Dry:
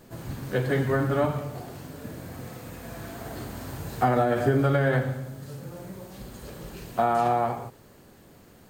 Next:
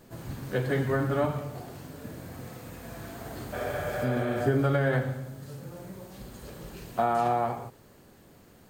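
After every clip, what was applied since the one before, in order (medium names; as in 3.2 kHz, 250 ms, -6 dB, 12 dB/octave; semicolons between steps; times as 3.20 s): spectral replace 3.56–4.35 s, 380–4200 Hz after; trim -2.5 dB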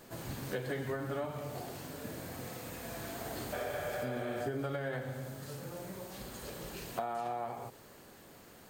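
bass shelf 320 Hz -9.5 dB; compression 5:1, threshold -37 dBFS, peak gain reduction 12.5 dB; dynamic bell 1.3 kHz, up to -4 dB, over -54 dBFS, Q 1.1; trim +3.5 dB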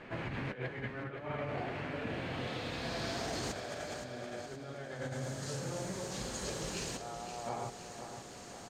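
compressor with a negative ratio -41 dBFS, ratio -0.5; low-pass sweep 2.3 kHz -> 6.7 kHz, 1.90–3.58 s; feedback delay 520 ms, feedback 53%, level -9 dB; trim +1.5 dB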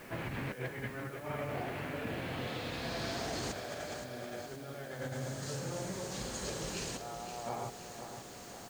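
word length cut 10-bit, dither triangular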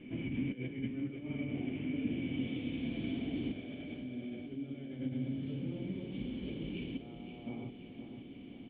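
cascade formant filter i; trim +11 dB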